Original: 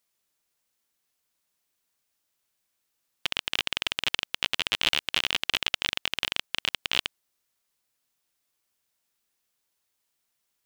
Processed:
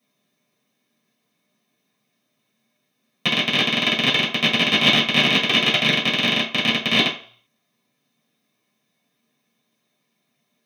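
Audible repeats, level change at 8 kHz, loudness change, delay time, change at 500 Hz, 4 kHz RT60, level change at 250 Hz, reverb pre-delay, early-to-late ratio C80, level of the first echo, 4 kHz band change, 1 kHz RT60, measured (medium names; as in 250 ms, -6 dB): no echo, +3.5 dB, +10.0 dB, no echo, +16.0 dB, 0.45 s, +23.0 dB, 3 ms, 12.0 dB, no echo, +9.0 dB, 0.50 s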